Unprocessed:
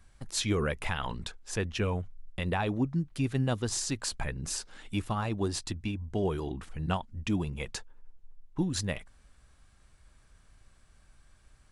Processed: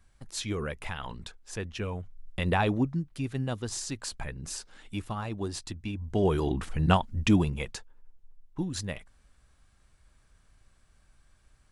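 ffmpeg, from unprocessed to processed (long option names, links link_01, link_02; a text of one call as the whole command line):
ffmpeg -i in.wav -af "volume=16dB,afade=type=in:start_time=1.98:duration=0.63:silence=0.354813,afade=type=out:start_time=2.61:duration=0.45:silence=0.398107,afade=type=in:start_time=5.83:duration=0.74:silence=0.281838,afade=type=out:start_time=7.31:duration=0.46:silence=0.298538" out.wav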